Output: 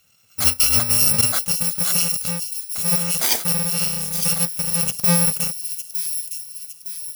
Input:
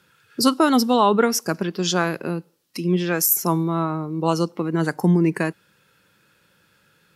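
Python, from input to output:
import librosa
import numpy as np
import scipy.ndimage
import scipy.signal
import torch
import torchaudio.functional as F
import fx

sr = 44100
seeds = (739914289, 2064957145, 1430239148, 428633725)

y = fx.bit_reversed(x, sr, seeds[0], block=128)
y = fx.echo_wet_highpass(y, sr, ms=909, feedback_pct=48, hz=4100.0, wet_db=-7.0)
y = fx.quant_float(y, sr, bits=2, at=(3.14, 4.82))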